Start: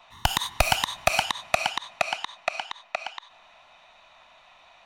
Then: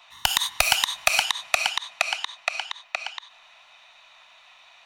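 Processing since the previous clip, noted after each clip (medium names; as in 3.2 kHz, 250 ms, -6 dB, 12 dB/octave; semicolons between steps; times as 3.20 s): tilt shelf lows -8.5 dB, about 880 Hz; trim -2.5 dB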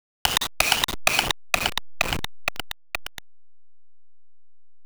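send-on-delta sampling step -20.5 dBFS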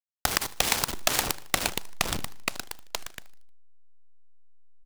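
feedback delay 77 ms, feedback 49%, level -20 dB; on a send at -16 dB: reverberation RT60 0.55 s, pre-delay 3 ms; on the sum: delay time shaken by noise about 2.4 kHz, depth 0.13 ms; trim -4 dB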